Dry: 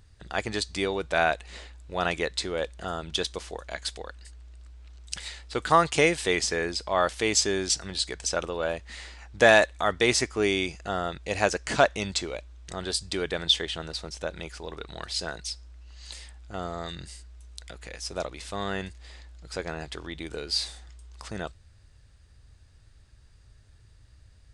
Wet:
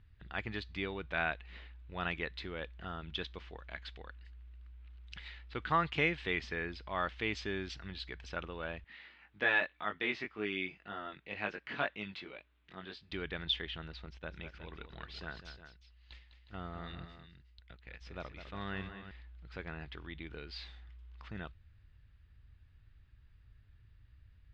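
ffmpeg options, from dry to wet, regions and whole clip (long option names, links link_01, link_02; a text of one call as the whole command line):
ffmpeg -i in.wav -filter_complex "[0:a]asettb=1/sr,asplit=3[link_01][link_02][link_03];[link_01]atrim=end=8.844[link_04];[link_02]atrim=start=8.84:end=13.12,asetpts=PTS-STARTPTS,afade=type=in:duration=0.004:curve=qsin,afade=type=out:start_time=4.276:duration=0.004:curve=qsin,flanger=delay=19:depth=2.2:speed=1.9,highpass=190,lowpass=3400,aemphasis=mode=production:type=50kf[link_05];[link_03]atrim=start=13.116[link_06];[link_04][link_05]acrossfade=duration=0.004:curve1=hsin:curve2=qsin[link_07];[link_07][link_06]acrossfade=duration=0.004:curve1=qsin:curve2=hsin,asettb=1/sr,asplit=3[link_08][link_09][link_10];[link_08]atrim=end=14.064[link_11];[link_09]atrim=start=14.06:end=19.11,asetpts=PTS-STARTPTS,afade=type=in:duration=0.004:curve=qsin,afade=type=out:start_time=5.046:duration=0.004:curve=qsin,agate=range=-10dB:threshold=-43dB:ratio=16:release=100:detection=peak,aecho=1:1:204|362:0.316|0.251,atrim=end_sample=222705[link_12];[link_10]atrim=start=19.106[link_13];[link_11][link_12]acrossfade=duration=0.004:curve1=hsin:curve2=qsin[link_14];[link_14][link_13]acrossfade=duration=0.004:curve1=qsin:curve2=hsin,lowpass=frequency=3100:width=0.5412,lowpass=frequency=3100:width=1.3066,equalizer=frequency=580:width_type=o:width=1.7:gain=-10.5,volume=-5dB" out.wav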